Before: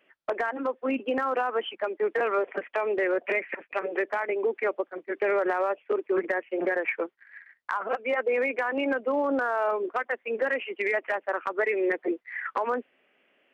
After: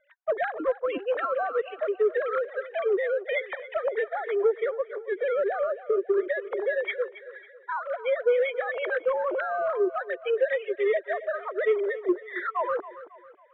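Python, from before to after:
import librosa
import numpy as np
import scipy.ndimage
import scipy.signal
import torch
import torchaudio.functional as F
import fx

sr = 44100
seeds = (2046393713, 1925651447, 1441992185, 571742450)

p1 = fx.sine_speech(x, sr)
p2 = fx.rider(p1, sr, range_db=10, speed_s=0.5)
p3 = p1 + (p2 * 10.0 ** (2.5 / 20.0))
p4 = np.repeat(scipy.signal.resample_poly(p3, 1, 8), 8)[:len(p3)]
p5 = 10.0 ** (-9.5 / 20.0) * np.tanh(p4 / 10.0 ** (-9.5 / 20.0))
p6 = scipy.signal.sosfilt(scipy.signal.ellip(4, 1.0, 40, 2900.0, 'lowpass', fs=sr, output='sos'), p5)
p7 = p6 + fx.echo_feedback(p6, sr, ms=274, feedback_pct=42, wet_db=-15.5, dry=0)
y = p7 * 10.0 ** (-4.5 / 20.0)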